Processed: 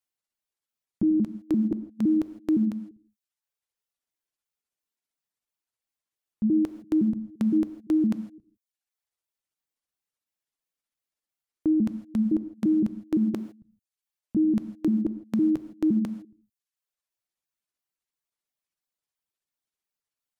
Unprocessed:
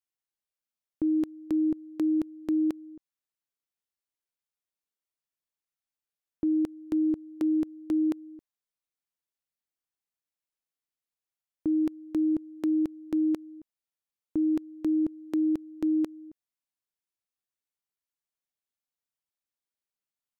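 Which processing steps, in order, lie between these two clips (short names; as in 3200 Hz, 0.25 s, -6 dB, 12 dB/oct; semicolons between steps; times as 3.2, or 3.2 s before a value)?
trilling pitch shifter -6.5 st, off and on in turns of 0.171 s; reverb removal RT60 0.73 s; non-linear reverb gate 0.18 s flat, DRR 11 dB; gain +3.5 dB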